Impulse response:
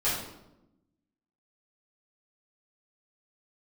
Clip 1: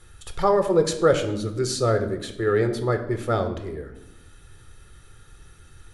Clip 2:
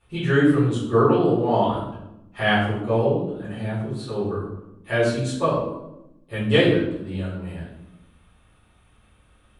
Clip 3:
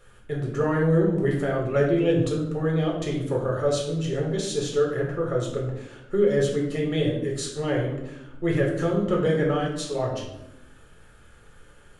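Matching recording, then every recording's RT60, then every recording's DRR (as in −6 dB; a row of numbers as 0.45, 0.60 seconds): 2; 0.90, 0.90, 0.90 seconds; 6.5, −12.0, −2.5 decibels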